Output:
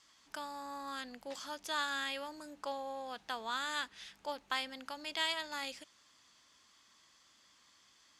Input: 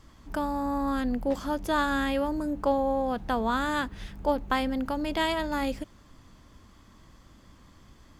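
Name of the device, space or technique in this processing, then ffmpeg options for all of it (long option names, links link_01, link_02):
piezo pickup straight into a mixer: -af "lowpass=5600,aderivative,volume=6dB"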